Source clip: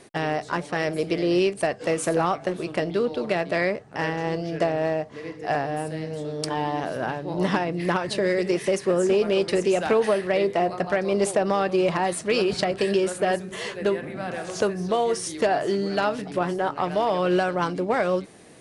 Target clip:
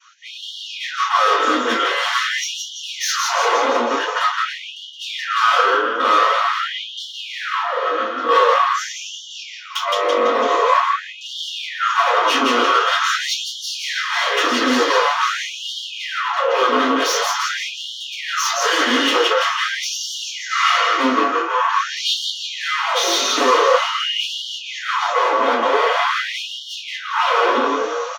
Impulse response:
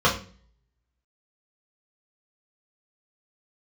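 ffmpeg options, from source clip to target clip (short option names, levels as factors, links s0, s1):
-filter_complex "[0:a]asplit=2[s0][s1];[s1]aeval=exprs='clip(val(0),-1,0.0531)':c=same,volume=0.562[s2];[s0][s2]amix=inputs=2:normalize=0,asplit=7[s3][s4][s5][s6][s7][s8][s9];[s4]adelay=110,afreqshift=57,volume=0.631[s10];[s5]adelay=220,afreqshift=114,volume=0.302[s11];[s6]adelay=330,afreqshift=171,volume=0.145[s12];[s7]adelay=440,afreqshift=228,volume=0.07[s13];[s8]adelay=550,afreqshift=285,volume=0.0335[s14];[s9]adelay=660,afreqshift=342,volume=0.016[s15];[s3][s10][s11][s12][s13][s14][s15]amix=inputs=7:normalize=0,asetrate=29106,aresample=44100,acrossover=split=630[s16][s17];[s17]dynaudnorm=f=150:g=5:m=5.01[s18];[s16][s18]amix=inputs=2:normalize=0,adynamicequalizer=threshold=0.0355:dfrequency=1100:dqfactor=2.3:tfrequency=1100:tqfactor=2.3:attack=5:release=100:ratio=0.375:range=2.5:mode=cutabove:tftype=bell,aeval=exprs='1.12*(cos(1*acos(clip(val(0)/1.12,-1,1)))-cos(1*PI/2))+0.1*(cos(3*acos(clip(val(0)/1.12,-1,1)))-cos(3*PI/2))+0.316*(cos(4*acos(clip(val(0)/1.12,-1,1)))-cos(4*PI/2))+0.0224*(cos(5*acos(clip(val(0)/1.12,-1,1)))-cos(5*PI/2))+0.01*(cos(6*acos(clip(val(0)/1.12,-1,1)))-cos(6*PI/2))':c=same,equalizer=f=520:t=o:w=0.92:g=-6.5,acontrast=53,aeval=exprs='0.501*(abs(mod(val(0)/0.501+3,4)-2)-1)':c=same[s19];[1:a]atrim=start_sample=2205,atrim=end_sample=3969[s20];[s19][s20]afir=irnorm=-1:irlink=0,afftfilt=real='re*gte(b*sr/1024,230*pow(2900/230,0.5+0.5*sin(2*PI*0.46*pts/sr)))':imag='im*gte(b*sr/1024,230*pow(2900/230,0.5+0.5*sin(2*PI*0.46*pts/sr)))':win_size=1024:overlap=0.75,volume=0.126"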